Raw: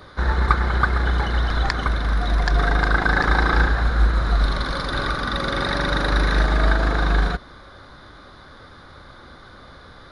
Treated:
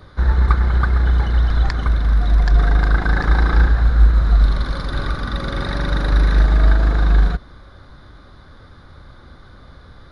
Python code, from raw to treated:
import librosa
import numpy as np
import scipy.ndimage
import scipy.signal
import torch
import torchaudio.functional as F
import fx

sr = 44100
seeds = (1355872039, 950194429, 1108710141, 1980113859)

y = fx.low_shelf(x, sr, hz=200.0, db=11.5)
y = y * 10.0 ** (-4.5 / 20.0)